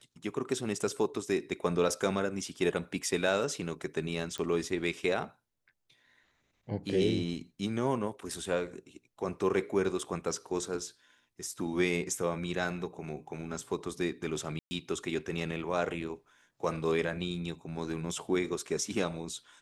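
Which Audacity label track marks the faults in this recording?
4.380000	4.380000	click −23 dBFS
14.590000	14.710000	drop-out 120 ms

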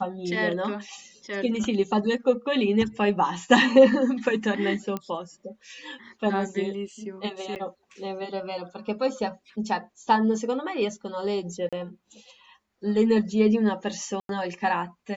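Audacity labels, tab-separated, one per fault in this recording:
4.970000	4.970000	click −17 dBFS
7.550000	7.560000	drop-out 8.9 ms
11.690000	11.730000	drop-out 36 ms
14.200000	14.290000	drop-out 92 ms

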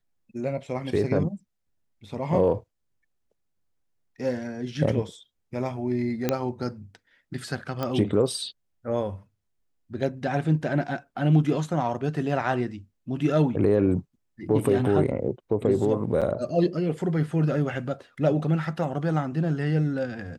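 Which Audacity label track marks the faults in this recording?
6.290000	6.290000	click −9 dBFS
7.830000	7.830000	click −16 dBFS
16.210000	16.220000	drop-out 7.1 ms

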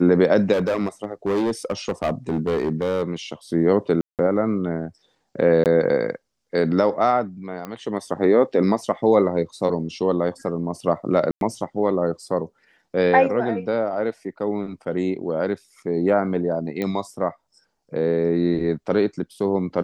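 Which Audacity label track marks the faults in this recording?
0.520000	3.030000	clipping −17.5 dBFS
4.010000	4.190000	drop-out 178 ms
5.640000	5.660000	drop-out 18 ms
7.650000	7.650000	click −18 dBFS
11.310000	11.410000	drop-out 102 ms
16.820000	16.820000	click −14 dBFS

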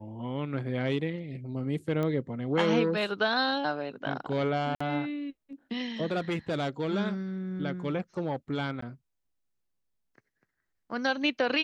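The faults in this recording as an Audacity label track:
2.030000	2.030000	click −20 dBFS
4.750000	4.800000	drop-out 55 ms
8.810000	8.820000	drop-out 14 ms

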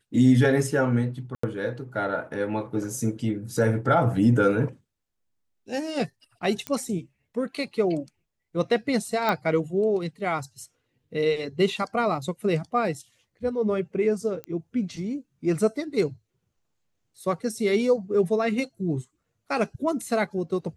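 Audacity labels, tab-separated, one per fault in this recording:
1.350000	1.430000	drop-out 84 ms
6.670000	6.670000	click −15 dBFS
9.290000	9.290000	click −12 dBFS
14.440000	14.440000	click −21 dBFS

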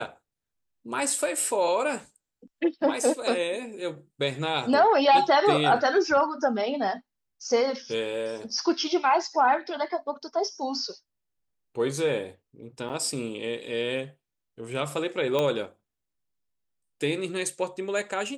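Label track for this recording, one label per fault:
12.890000	12.900000	drop-out 6.6 ms
15.390000	15.390000	click −13 dBFS

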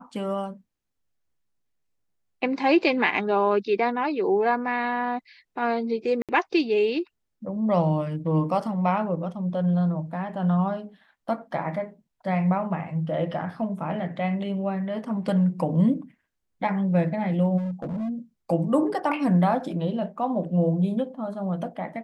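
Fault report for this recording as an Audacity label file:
6.220000	6.290000	drop-out 67 ms
17.570000	18.100000	clipping −26.5 dBFS

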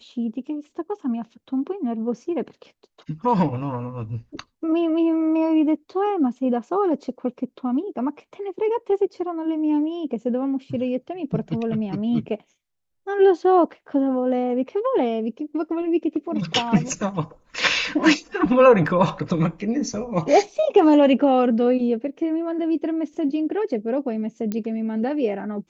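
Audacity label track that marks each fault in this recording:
18.870000	18.870000	drop-out 4 ms
24.520000	24.520000	click −14 dBFS

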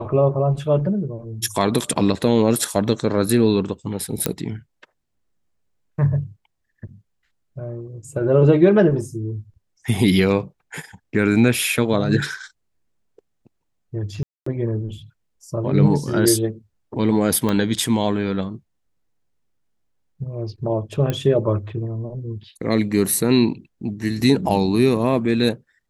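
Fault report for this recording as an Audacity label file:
4.260000	4.260000	click −4 dBFS
14.230000	14.460000	drop-out 234 ms
17.490000	17.490000	click −9 dBFS
21.100000	21.100000	click −10 dBFS

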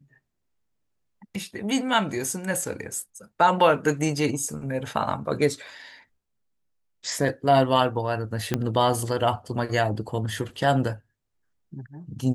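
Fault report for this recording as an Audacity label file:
8.540000	8.540000	click −9 dBFS

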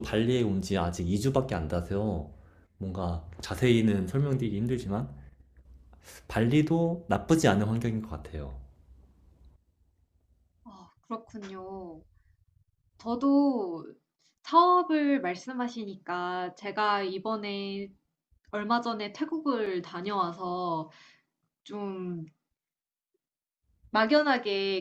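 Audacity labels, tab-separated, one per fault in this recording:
19.660000	19.660000	drop-out 4.2 ms

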